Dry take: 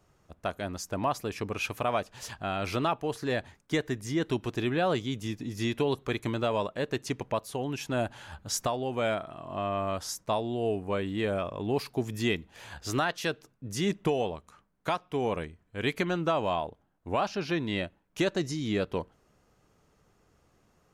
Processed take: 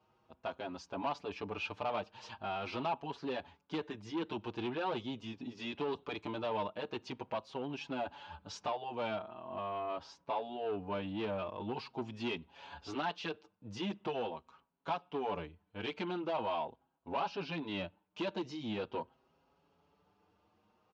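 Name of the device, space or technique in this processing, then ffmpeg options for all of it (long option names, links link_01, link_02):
barber-pole flanger into a guitar amplifier: -filter_complex "[0:a]asplit=2[link_01][link_02];[link_02]adelay=6,afreqshift=0.43[link_03];[link_01][link_03]amix=inputs=2:normalize=1,asoftclip=type=tanh:threshold=-29dB,highpass=97,equalizer=frequency=130:width_type=q:width=4:gain=-9,equalizer=frequency=900:width_type=q:width=4:gain=8,equalizer=frequency=1900:width_type=q:width=4:gain=-7,equalizer=frequency=2800:width_type=q:width=4:gain=4,lowpass=frequency=4600:width=0.5412,lowpass=frequency=4600:width=1.3066,asettb=1/sr,asplit=3[link_04][link_05][link_06];[link_04]atrim=end=9.224[link_07];[link_05]atrim=start=9.22:end=10.42,asetpts=PTS-STARTPTS,afade=type=in:duration=0.004:curve=qsin,afade=type=out:start_time=1.196:duration=0.004:curve=qsin,lowpass=frequency=3000:poles=1[link_08];[link_06]atrim=start=10.416[link_09];[link_07][link_08]acrossfade=duration=0.004:curve1=hsin:curve2=qsin[link_10];[link_10][link_09]acrossfade=duration=0.004:curve1=qsin:curve2=hsin,volume=-2.5dB"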